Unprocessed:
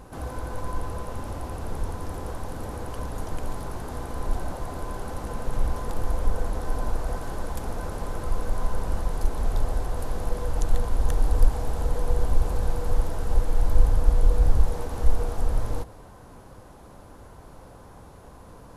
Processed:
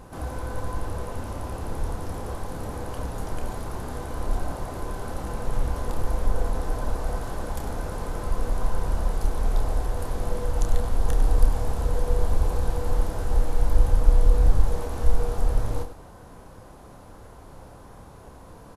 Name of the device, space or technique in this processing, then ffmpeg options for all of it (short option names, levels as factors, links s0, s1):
slapback doubling: -filter_complex "[0:a]asplit=3[s0][s1][s2];[s1]adelay=29,volume=0.447[s3];[s2]adelay=100,volume=0.282[s4];[s0][s3][s4]amix=inputs=3:normalize=0"